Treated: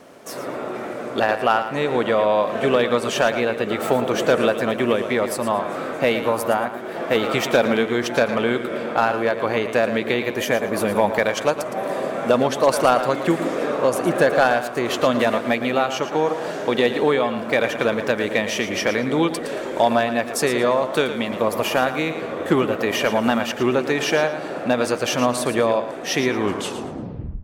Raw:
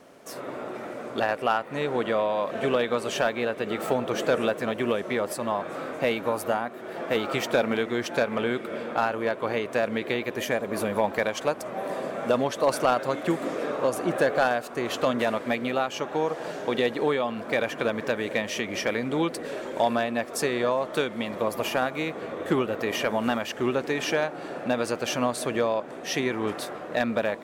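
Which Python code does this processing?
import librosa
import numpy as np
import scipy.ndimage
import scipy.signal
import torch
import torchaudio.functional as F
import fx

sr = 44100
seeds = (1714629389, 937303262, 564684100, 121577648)

y = fx.tape_stop_end(x, sr, length_s=1.02)
y = fx.echo_feedback(y, sr, ms=113, feedback_pct=24, wet_db=-10.5)
y = F.gain(torch.from_numpy(y), 6.0).numpy()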